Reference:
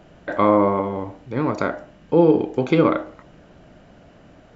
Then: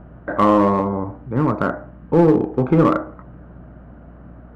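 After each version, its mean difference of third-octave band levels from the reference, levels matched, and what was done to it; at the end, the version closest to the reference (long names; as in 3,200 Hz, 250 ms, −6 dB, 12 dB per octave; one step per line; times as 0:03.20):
3.0 dB: low-pass with resonance 1,300 Hz, resonance Q 2.1
parametric band 150 Hz +9.5 dB 2.2 octaves
mains hum 60 Hz, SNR 25 dB
in parallel at −9.5 dB: wave folding −9.5 dBFS
on the sum: level −4.5 dB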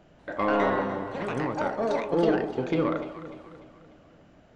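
5.5 dB: soft clipping −8 dBFS, distortion −17 dB
delay with pitch and tempo change per echo 189 ms, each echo +5 semitones, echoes 2
on a send: delay that swaps between a low-pass and a high-pass 148 ms, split 940 Hz, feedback 67%, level −9 dB
on the sum: downsampling to 22,050 Hz
level −8 dB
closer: first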